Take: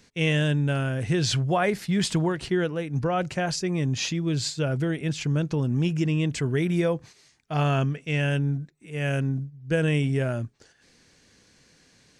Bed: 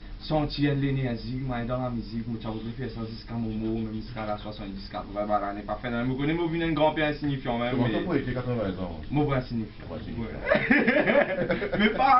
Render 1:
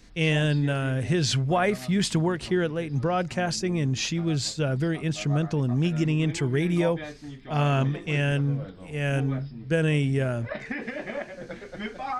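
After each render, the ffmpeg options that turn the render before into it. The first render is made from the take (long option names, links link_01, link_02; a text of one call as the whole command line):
ffmpeg -i in.wav -i bed.wav -filter_complex "[1:a]volume=-12dB[link_01];[0:a][link_01]amix=inputs=2:normalize=0" out.wav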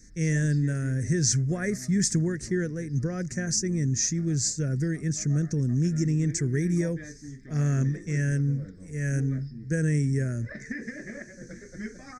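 ffmpeg -i in.wav -af "firequalizer=gain_entry='entry(200,0);entry(450,-6);entry(840,-25);entry(1800,0);entry(2900,-27);entry(5900,10);entry(11000,-3)':delay=0.05:min_phase=1" out.wav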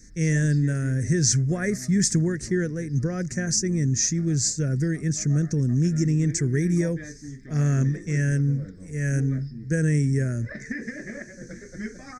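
ffmpeg -i in.wav -af "volume=3dB" out.wav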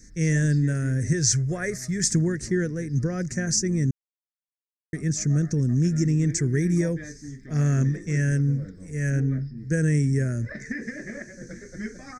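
ffmpeg -i in.wav -filter_complex "[0:a]asettb=1/sr,asplit=3[link_01][link_02][link_03];[link_01]atrim=end=1.134[link_04];[link_02]atrim=start=1.13:end=2.04,asetpts=PTS-STARTPTS,afade=type=in:duration=0.004:curve=qsin,afade=type=out:start_time=0.906:duration=0.004:curve=qsin,equalizer=frequency=230:width_type=o:width=0.59:gain=-13[link_05];[link_03]atrim=start=2.036[link_06];[link_04][link_05]acrossfade=duration=0.004:curve1=hsin:curve2=qsin[link_07];[link_07][link_06]acrossfade=duration=0.004:curve1=qsin:curve2=hsin,asettb=1/sr,asplit=3[link_08][link_09][link_10];[link_08]atrim=end=9.104[link_11];[link_09]atrim=start=9.1:end=9.58,asetpts=PTS-STARTPTS,afade=type=in:duration=0.004:curve=qsin,afade=type=out:start_time=0.476:duration=0.004:curve=qsin,adynamicsmooth=sensitivity=2:basefreq=5000[link_12];[link_10]atrim=start=9.576[link_13];[link_11][link_12]acrossfade=duration=0.004:curve1=hsin:curve2=qsin[link_14];[link_14][link_13]acrossfade=duration=0.004:curve1=qsin:curve2=hsin,asplit=3[link_15][link_16][link_17];[link_15]atrim=end=3.91,asetpts=PTS-STARTPTS,afade=type=out:start_time=3.906:duration=0.004:curve=hsin[link_18];[link_16]atrim=start=3.91:end=4.93,asetpts=PTS-STARTPTS,volume=0[link_19];[link_17]atrim=start=4.93,asetpts=PTS-STARTPTS,afade=type=in:duration=0.004:curve=hsin[link_20];[link_18][link_19][link_20]concat=n=3:v=0:a=1" out.wav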